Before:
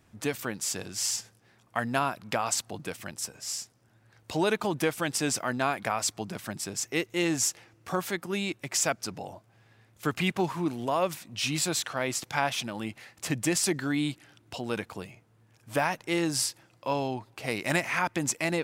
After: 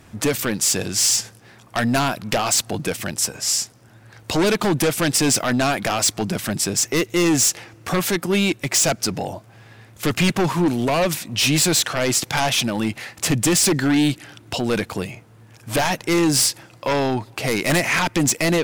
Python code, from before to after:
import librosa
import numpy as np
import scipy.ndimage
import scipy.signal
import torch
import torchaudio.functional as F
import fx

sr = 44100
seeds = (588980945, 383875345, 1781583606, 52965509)

p1 = fx.fold_sine(x, sr, drive_db=16, ceiling_db=-9.5)
p2 = x + (p1 * librosa.db_to_amplitude(-10.5))
p3 = fx.dynamic_eq(p2, sr, hz=1100.0, q=0.88, threshold_db=-36.0, ratio=4.0, max_db=-4)
y = p3 * librosa.db_to_amplitude(3.0)